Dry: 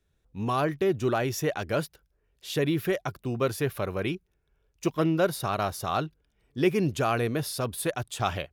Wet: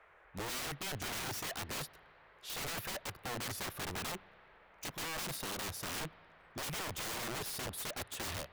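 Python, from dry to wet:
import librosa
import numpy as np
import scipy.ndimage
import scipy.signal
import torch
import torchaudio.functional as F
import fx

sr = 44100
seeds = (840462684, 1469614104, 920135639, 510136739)

y = (np.mod(10.0 ** (29.0 / 20.0) * x + 1.0, 2.0) - 1.0) / 10.0 ** (29.0 / 20.0)
y = fx.dmg_noise_band(y, sr, seeds[0], low_hz=410.0, high_hz=2100.0, level_db=-57.0)
y = fx.rev_spring(y, sr, rt60_s=3.0, pass_ms=(31, 52), chirp_ms=30, drr_db=20.0)
y = y * 10.0 ** (-6.0 / 20.0)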